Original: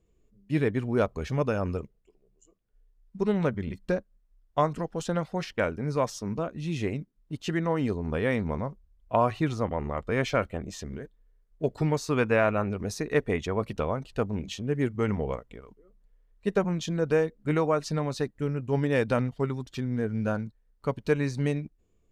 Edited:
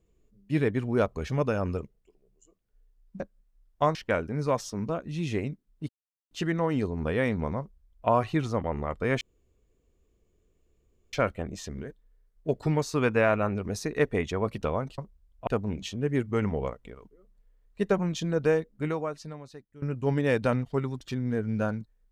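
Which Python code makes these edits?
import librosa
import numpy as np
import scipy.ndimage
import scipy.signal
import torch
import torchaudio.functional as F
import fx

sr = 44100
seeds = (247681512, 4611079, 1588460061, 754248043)

y = fx.edit(x, sr, fx.cut(start_s=3.2, length_s=0.76),
    fx.cut(start_s=4.71, length_s=0.73),
    fx.insert_silence(at_s=7.38, length_s=0.42),
    fx.duplicate(start_s=8.66, length_s=0.49, to_s=14.13),
    fx.insert_room_tone(at_s=10.28, length_s=1.92),
    fx.fade_out_to(start_s=17.23, length_s=1.25, curve='qua', floor_db=-19.5), tone=tone)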